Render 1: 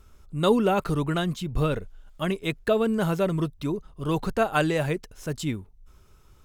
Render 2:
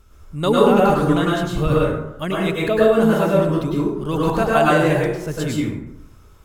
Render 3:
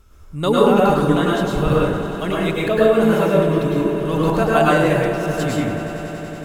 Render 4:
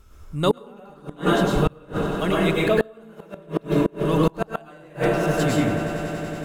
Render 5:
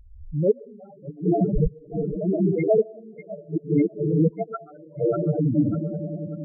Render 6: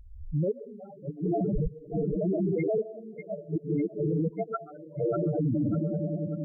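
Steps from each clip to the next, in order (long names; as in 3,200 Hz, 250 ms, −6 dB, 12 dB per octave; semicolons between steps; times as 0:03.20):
dense smooth reverb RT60 0.86 s, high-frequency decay 0.5×, pre-delay 90 ms, DRR −5.5 dB; level +1.5 dB
echo that builds up and dies away 94 ms, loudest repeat 5, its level −17 dB
gate with flip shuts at −7 dBFS, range −30 dB
spectral peaks only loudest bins 4; echo through a band-pass that steps 596 ms, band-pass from 1,300 Hz, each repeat 0.7 octaves, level −3.5 dB; level +3 dB
brickwall limiter −21 dBFS, peak gain reduction 11.5 dB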